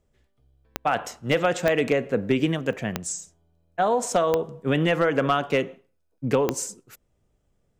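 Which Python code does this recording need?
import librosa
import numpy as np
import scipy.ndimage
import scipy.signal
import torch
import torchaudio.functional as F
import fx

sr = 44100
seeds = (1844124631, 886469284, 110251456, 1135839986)

y = fx.fix_declip(x, sr, threshold_db=-11.5)
y = fx.fix_declick_ar(y, sr, threshold=10.0)
y = fx.fix_interpolate(y, sr, at_s=(2.73, 6.18), length_ms=1.0)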